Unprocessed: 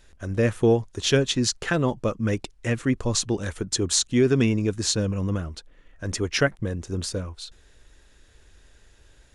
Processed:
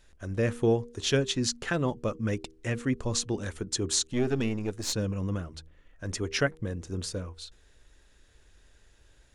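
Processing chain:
0:04.13–0:04.93: gain on one half-wave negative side −7 dB
hum removal 79.18 Hz, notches 6
level −5 dB

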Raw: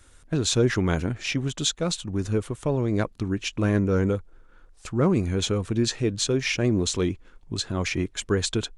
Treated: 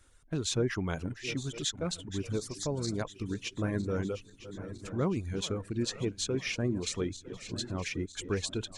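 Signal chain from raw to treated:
feedback delay that plays each chunk backwards 478 ms, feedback 74%, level −12.5 dB
0:02.41–0:03.02: high shelf with overshoot 3,800 Hz +7.5 dB, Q 3
reverb reduction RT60 0.77 s
level −8 dB

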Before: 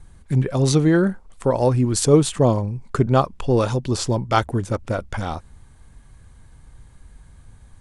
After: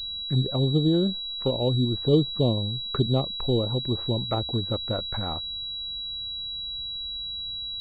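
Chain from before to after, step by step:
treble cut that deepens with the level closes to 530 Hz, closed at −15.5 dBFS
switching amplifier with a slow clock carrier 3,900 Hz
level −5 dB

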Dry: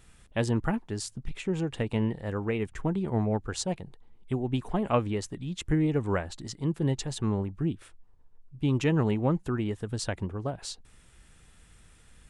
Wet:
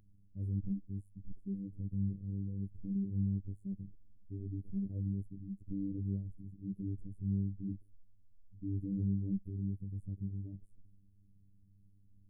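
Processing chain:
transient designer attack −5 dB, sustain +3 dB
inverse Chebyshev band-stop filter 1,200–5,200 Hz, stop band 80 dB
phases set to zero 98.3 Hz
level −3 dB

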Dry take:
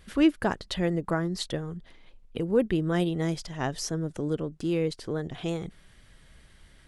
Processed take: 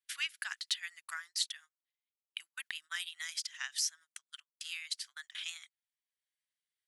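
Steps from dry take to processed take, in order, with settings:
inverse Chebyshev high-pass filter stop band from 500 Hz, stop band 60 dB
noise gate −52 dBFS, range −38 dB
high-shelf EQ 3,600 Hz +7.5 dB
downward compressor 1.5 to 1, threshold −47 dBFS, peak gain reduction 8 dB
transient designer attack +2 dB, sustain −4 dB
level +2.5 dB

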